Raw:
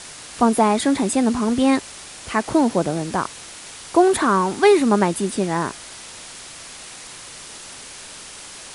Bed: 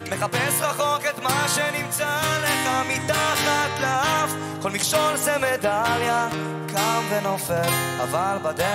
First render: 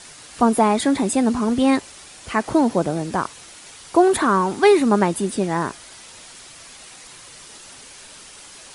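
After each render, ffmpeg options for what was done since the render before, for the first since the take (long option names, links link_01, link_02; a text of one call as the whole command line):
ffmpeg -i in.wav -af "afftdn=noise_reduction=6:noise_floor=-39" out.wav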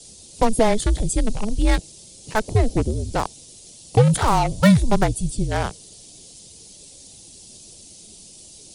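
ffmpeg -i in.wav -filter_complex "[0:a]afreqshift=-220,acrossover=split=330|560|3600[link_01][link_02][link_03][link_04];[link_03]acrusher=bits=3:mix=0:aa=0.5[link_05];[link_01][link_02][link_05][link_04]amix=inputs=4:normalize=0" out.wav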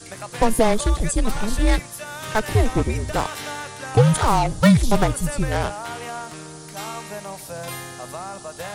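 ffmpeg -i in.wav -i bed.wav -filter_complex "[1:a]volume=-10.5dB[link_01];[0:a][link_01]amix=inputs=2:normalize=0" out.wav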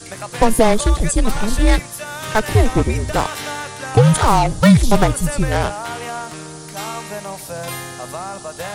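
ffmpeg -i in.wav -af "volume=4.5dB,alimiter=limit=-1dB:level=0:latency=1" out.wav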